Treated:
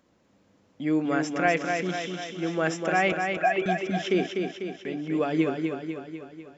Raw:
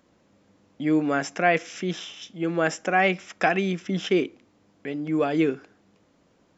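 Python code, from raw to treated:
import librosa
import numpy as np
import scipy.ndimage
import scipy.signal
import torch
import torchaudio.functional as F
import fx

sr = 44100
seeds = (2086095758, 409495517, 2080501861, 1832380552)

y = fx.sine_speech(x, sr, at=(3.12, 3.66))
y = fx.echo_feedback(y, sr, ms=248, feedback_pct=57, wet_db=-5.0)
y = y * librosa.db_to_amplitude(-3.0)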